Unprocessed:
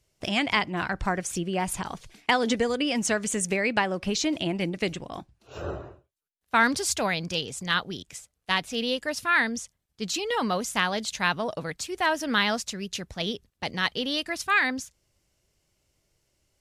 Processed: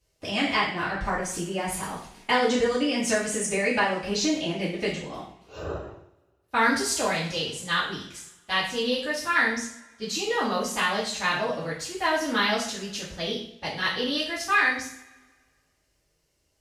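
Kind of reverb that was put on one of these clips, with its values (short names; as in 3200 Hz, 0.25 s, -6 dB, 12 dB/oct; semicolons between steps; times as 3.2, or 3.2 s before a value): two-slope reverb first 0.54 s, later 1.7 s, from -21 dB, DRR -9 dB; gain -8.5 dB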